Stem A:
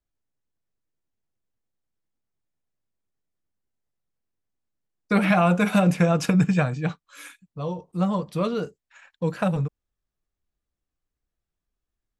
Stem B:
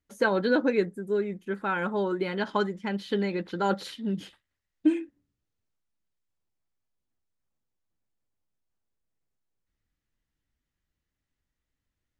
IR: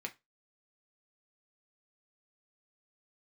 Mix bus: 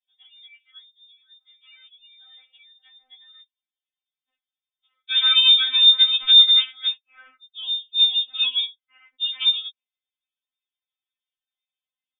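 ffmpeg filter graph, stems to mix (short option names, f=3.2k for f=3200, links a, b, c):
-filter_complex "[0:a]highpass=140,volume=0.5dB[a];[1:a]highpass=170,acompressor=threshold=-30dB:ratio=5,volume=-15.5dB,asplit=3[b][c][d];[b]atrim=end=3.45,asetpts=PTS-STARTPTS,afade=t=out:st=3.446:d=0.004:c=hsin[e];[c]atrim=start=3.45:end=4.29,asetpts=PTS-STARTPTS,volume=0[f];[d]atrim=start=4.29,asetpts=PTS-STARTPTS,afade=t=in:d=0.004:c=hsin[g];[e][f][g]concat=n=3:v=0:a=1[h];[a][h]amix=inputs=2:normalize=0,aemphasis=mode=reproduction:type=75fm,lowpass=f=3.2k:t=q:w=0.5098,lowpass=f=3.2k:t=q:w=0.6013,lowpass=f=3.2k:t=q:w=0.9,lowpass=f=3.2k:t=q:w=2.563,afreqshift=-3800,afftfilt=real='re*3.46*eq(mod(b,12),0)':imag='im*3.46*eq(mod(b,12),0)':win_size=2048:overlap=0.75"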